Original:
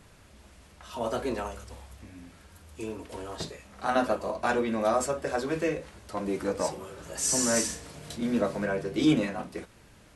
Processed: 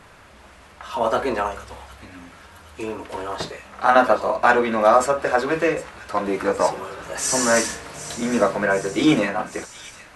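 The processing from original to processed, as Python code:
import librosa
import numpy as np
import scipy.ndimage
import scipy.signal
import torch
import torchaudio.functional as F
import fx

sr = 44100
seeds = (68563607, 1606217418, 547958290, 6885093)

p1 = fx.peak_eq(x, sr, hz=1200.0, db=11.5, octaves=2.9)
p2 = p1 + fx.echo_wet_highpass(p1, sr, ms=761, feedback_pct=71, hz=2600.0, wet_db=-13.0, dry=0)
y = F.gain(torch.from_numpy(p2), 2.0).numpy()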